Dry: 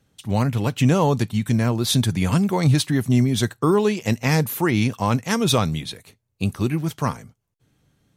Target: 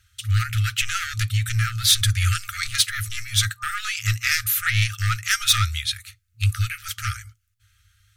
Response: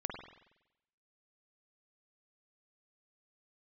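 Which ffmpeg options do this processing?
-af "aeval=exprs='0.473*(cos(1*acos(clip(val(0)/0.473,-1,1)))-cos(1*PI/2))+0.0841*(cos(5*acos(clip(val(0)/0.473,-1,1)))-cos(5*PI/2))':channel_layout=same,afftfilt=real='re*(1-between(b*sr/4096,110,1200))':imag='im*(1-between(b*sr/4096,110,1200))':win_size=4096:overlap=0.75,volume=2.5dB"

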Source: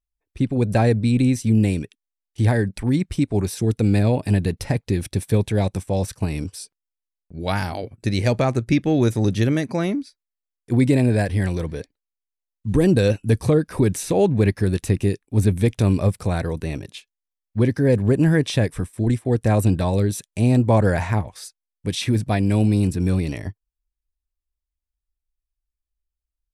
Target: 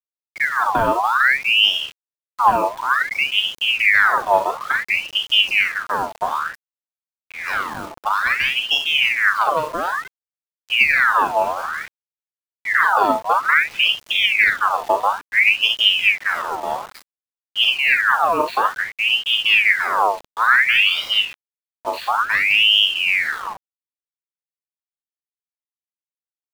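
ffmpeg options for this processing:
ffmpeg -i in.wav -filter_complex "[0:a]lowshelf=frequency=110:gain=7.5,asplit=2[link_01][link_02];[link_02]aecho=0:1:39|65:0.562|0.316[link_03];[link_01][link_03]amix=inputs=2:normalize=0,aresample=8000,aresample=44100,equalizer=frequency=1300:width_type=o:width=0.67:gain=-12,acrusher=bits=5:mix=0:aa=0.000001,aeval=exprs='val(0)*sin(2*PI*1900*n/s+1900*0.6/0.57*sin(2*PI*0.57*n/s))':channel_layout=same" out.wav

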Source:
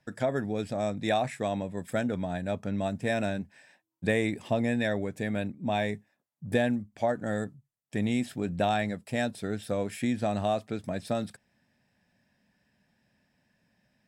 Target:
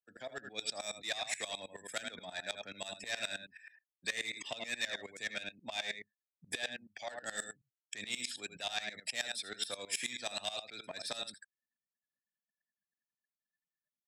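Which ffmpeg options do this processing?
ffmpeg -i in.wav -filter_complex "[0:a]aecho=1:1:81:0.422,acrossover=split=100|2300[link_01][link_02][link_03];[link_01]acompressor=threshold=-52dB:ratio=4[link_04];[link_02]acompressor=threshold=-35dB:ratio=4[link_05];[link_03]acompressor=threshold=-42dB:ratio=4[link_06];[link_04][link_05][link_06]amix=inputs=3:normalize=0,afftfilt=real='re*gte(hypot(re,im),0.001)':imag='im*gte(hypot(re,im),0.001)':win_size=1024:overlap=0.75,acrossover=split=170|950[link_07][link_08][link_09];[link_09]dynaudnorm=framelen=320:gausssize=3:maxgain=10dB[link_10];[link_07][link_08][link_10]amix=inputs=3:normalize=0,volume=23.5dB,asoftclip=hard,volume=-23.5dB,afftdn=noise_reduction=20:noise_floor=-44,bass=frequency=250:gain=-14,treble=frequency=4000:gain=0,asoftclip=type=tanh:threshold=-28dB,equalizer=frequency=5400:width=0.59:gain=12.5,aeval=exprs='val(0)*pow(10,-19*if(lt(mod(-9.4*n/s,1),2*abs(-9.4)/1000),1-mod(-9.4*n/s,1)/(2*abs(-9.4)/1000),(mod(-9.4*n/s,1)-2*abs(-9.4)/1000)/(1-2*abs(-9.4)/1000))/20)':channel_layout=same,volume=-2.5dB" out.wav

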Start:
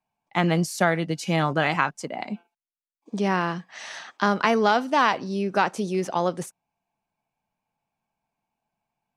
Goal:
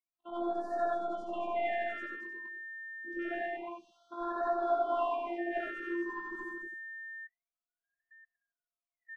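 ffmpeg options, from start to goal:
ffmpeg -i in.wav -af "afftfilt=real='re':imag='-im':win_size=8192:overlap=0.75,flanger=delay=18.5:depth=2.1:speed=0.99,aeval=exprs='(tanh(20*val(0)+0.1)-tanh(0.1))/20':channel_layout=same,afftfilt=real='hypot(re,im)*cos(PI*b)':imag='0':win_size=512:overlap=0.75,afwtdn=0.00708,aemphasis=mode=reproduction:type=50kf,aecho=1:1:225:0.531,adynamicequalizer=threshold=0.00282:dfrequency=720:dqfactor=3.7:tfrequency=720:tqfactor=3.7:attack=5:release=100:ratio=0.375:range=2:mode=boostabove:tftype=bell,aeval=exprs='val(0)+0.00708*sin(2*PI*1800*n/s)':channel_layout=same,afftfilt=real='re*(1-between(b*sr/1024,640*pow(2500/640,0.5+0.5*sin(2*PI*0.27*pts/sr))/1.41,640*pow(2500/640,0.5+0.5*sin(2*PI*0.27*pts/sr))*1.41))':imag='im*(1-between(b*sr/1024,640*pow(2500/640,0.5+0.5*sin(2*PI*0.27*pts/sr))/1.41,640*pow(2500/640,0.5+0.5*sin(2*PI*0.27*pts/sr))*1.41))':win_size=1024:overlap=0.75,volume=1.5dB" out.wav

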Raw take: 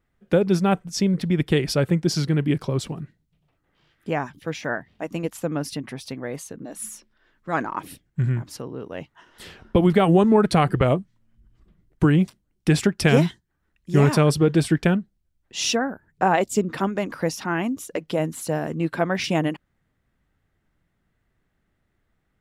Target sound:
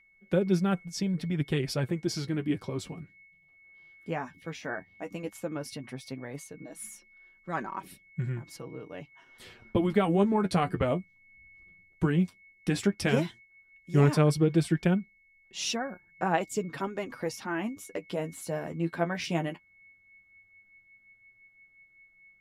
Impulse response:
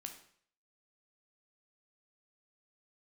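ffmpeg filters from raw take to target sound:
-af "aeval=exprs='val(0)+0.00398*sin(2*PI*2200*n/s)':channel_layout=same,flanger=delay=5.2:depth=6.6:regen=30:speed=0.13:shape=sinusoidal,volume=-4.5dB"

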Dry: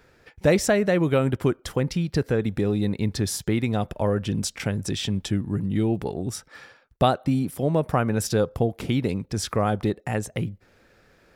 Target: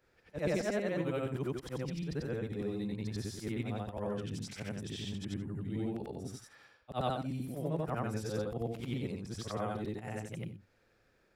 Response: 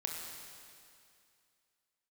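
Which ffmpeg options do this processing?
-filter_complex "[0:a]afftfilt=real='re':imag='-im':win_size=8192:overlap=0.75,acrossover=split=5600[link_01][link_02];[link_02]acompressor=threshold=-45dB:ratio=4:attack=1:release=60[link_03];[link_01][link_03]amix=inputs=2:normalize=0,volume=-8.5dB"

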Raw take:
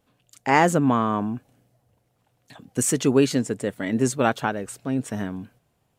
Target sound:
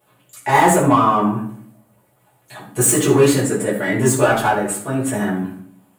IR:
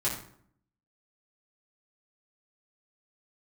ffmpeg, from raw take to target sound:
-filter_complex "[0:a]asplit=2[link_01][link_02];[link_02]highpass=frequency=720:poles=1,volume=21dB,asoftclip=type=tanh:threshold=-2.5dB[link_03];[link_01][link_03]amix=inputs=2:normalize=0,lowpass=frequency=2100:poles=1,volume=-6dB,aexciter=amount=6.6:drive=4.3:freq=7800[link_04];[1:a]atrim=start_sample=2205[link_05];[link_04][link_05]afir=irnorm=-1:irlink=0,volume=-7.5dB"

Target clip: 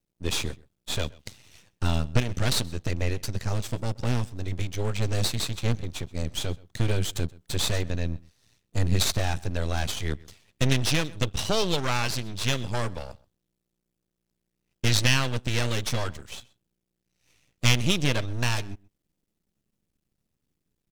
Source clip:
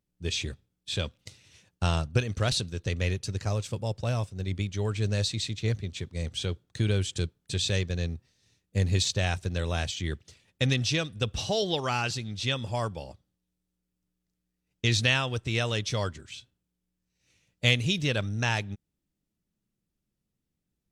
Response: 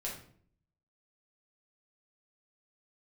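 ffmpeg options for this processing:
-filter_complex "[0:a]aeval=exprs='max(val(0),0)':channel_layout=same,asplit=2[link_01][link_02];[link_02]adelay=128.3,volume=-23dB,highshelf=frequency=4000:gain=-2.89[link_03];[link_01][link_03]amix=inputs=2:normalize=0,volume=7dB"

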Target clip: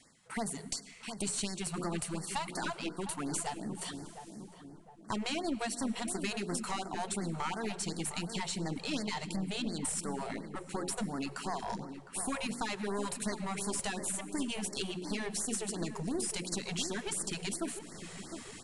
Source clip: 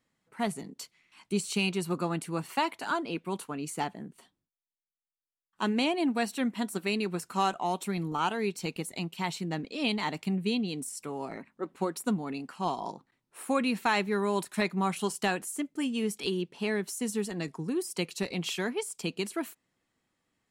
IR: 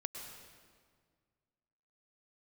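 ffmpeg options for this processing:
-filter_complex "[0:a]highshelf=frequency=5300:gain=11.5,bandreject=frequency=60:width_type=h:width=6,bandreject=frequency=120:width_type=h:width=6,bandreject=frequency=180:width_type=h:width=6,bandreject=frequency=240:width_type=h:width=6,bandreject=frequency=300:width_type=h:width=6,bandreject=frequency=360:width_type=h:width=6,bandreject=frequency=420:width_type=h:width=6,bandreject=frequency=480:width_type=h:width=6,bandreject=frequency=540:width_type=h:width=6,areverse,acompressor=mode=upward:threshold=-41dB:ratio=2.5,areverse,adynamicequalizer=threshold=0.00282:dfrequency=490:dqfactor=6.3:tfrequency=490:tqfactor=6.3:attack=5:release=100:ratio=0.375:range=3:mode=cutabove:tftype=bell,acompressor=threshold=-45dB:ratio=3,atempo=1.1,aeval=exprs='clip(val(0),-1,0.00631)':channel_layout=same,asplit=2[link_01][link_02];[link_02]adelay=708,lowpass=frequency=910:poles=1,volume=-8dB,asplit=2[link_03][link_04];[link_04]adelay=708,lowpass=frequency=910:poles=1,volume=0.52,asplit=2[link_05][link_06];[link_06]adelay=708,lowpass=frequency=910:poles=1,volume=0.52,asplit=2[link_07][link_08];[link_08]adelay=708,lowpass=frequency=910:poles=1,volume=0.52,asplit=2[link_09][link_10];[link_10]adelay=708,lowpass=frequency=910:poles=1,volume=0.52,asplit=2[link_11][link_12];[link_12]adelay=708,lowpass=frequency=910:poles=1,volume=0.52[link_13];[link_01][link_03][link_05][link_07][link_09][link_11][link_13]amix=inputs=7:normalize=0,asplit=2[link_14][link_15];[1:a]atrim=start_sample=2205,asetrate=48510,aresample=44100[link_16];[link_15][link_16]afir=irnorm=-1:irlink=0,volume=-8.5dB[link_17];[link_14][link_17]amix=inputs=2:normalize=0,aresample=22050,aresample=44100,afftfilt=real='re*(1-between(b*sr/1024,240*pow(3100/240,0.5+0.5*sin(2*PI*2.8*pts/sr))/1.41,240*pow(3100/240,0.5+0.5*sin(2*PI*2.8*pts/sr))*1.41))':imag='im*(1-between(b*sr/1024,240*pow(3100/240,0.5+0.5*sin(2*PI*2.8*pts/sr))/1.41,240*pow(3100/240,0.5+0.5*sin(2*PI*2.8*pts/sr))*1.41))':win_size=1024:overlap=0.75,volume=8dB"

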